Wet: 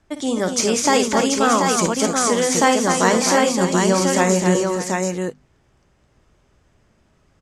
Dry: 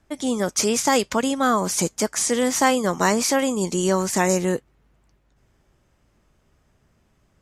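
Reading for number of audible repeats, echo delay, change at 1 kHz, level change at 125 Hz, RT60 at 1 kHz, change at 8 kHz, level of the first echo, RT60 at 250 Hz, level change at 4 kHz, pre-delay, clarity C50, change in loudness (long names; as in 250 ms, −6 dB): 4, 54 ms, +4.5 dB, +5.0 dB, no reverb audible, +3.0 dB, −10.5 dB, no reverb audible, +4.5 dB, no reverb audible, no reverb audible, +3.5 dB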